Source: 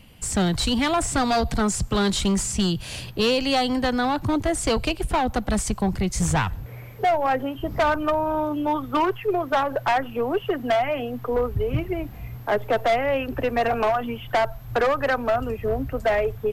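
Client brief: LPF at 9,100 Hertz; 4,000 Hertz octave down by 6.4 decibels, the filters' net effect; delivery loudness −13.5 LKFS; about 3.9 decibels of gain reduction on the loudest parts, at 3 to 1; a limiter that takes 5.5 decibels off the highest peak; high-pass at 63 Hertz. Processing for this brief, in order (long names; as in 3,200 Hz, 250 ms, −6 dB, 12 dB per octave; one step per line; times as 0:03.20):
high-pass filter 63 Hz
low-pass filter 9,100 Hz
parametric band 4,000 Hz −8.5 dB
downward compressor 3 to 1, threshold −23 dBFS
level +15 dB
brickwall limiter −4.5 dBFS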